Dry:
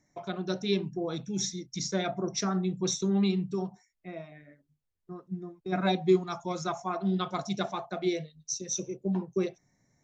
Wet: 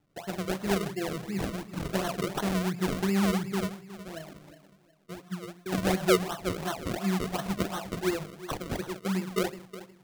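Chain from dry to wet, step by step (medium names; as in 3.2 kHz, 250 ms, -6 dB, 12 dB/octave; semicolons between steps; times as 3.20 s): bucket-brigade echo 364 ms, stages 4096, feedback 35%, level -15 dB; gated-style reverb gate 180 ms rising, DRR 11.5 dB; decimation with a swept rate 36×, swing 100% 2.8 Hz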